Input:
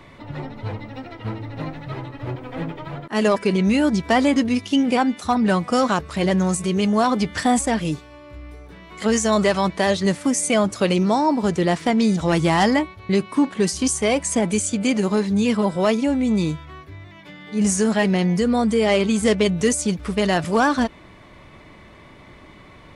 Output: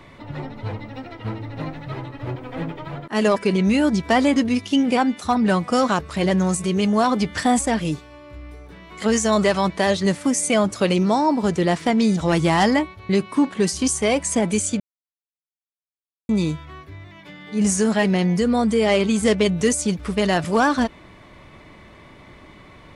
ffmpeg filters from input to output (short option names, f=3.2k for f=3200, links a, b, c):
-filter_complex "[0:a]asplit=3[a][b][c];[a]atrim=end=14.8,asetpts=PTS-STARTPTS,afade=t=out:st=14.796:d=0.004:c=hsin[d];[b]atrim=start=14.8:end=16.29,asetpts=PTS-STARTPTS,volume=0[e];[c]atrim=start=16.29,asetpts=PTS-STARTPTS,afade=t=in:d=0.004:c=hsin[f];[d][e][f]concat=n=3:v=0:a=1"